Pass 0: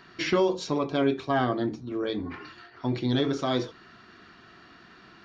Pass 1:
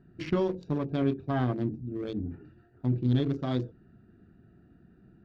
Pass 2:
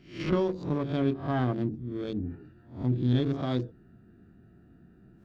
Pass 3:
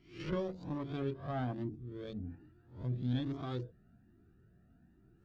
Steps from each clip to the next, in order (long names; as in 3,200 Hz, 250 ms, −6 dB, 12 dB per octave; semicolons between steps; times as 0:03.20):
adaptive Wiener filter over 41 samples; bass and treble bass +12 dB, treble −3 dB; level −6.5 dB
peak hold with a rise ahead of every peak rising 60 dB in 0.42 s
flanger whose copies keep moving one way rising 1.2 Hz; level −4.5 dB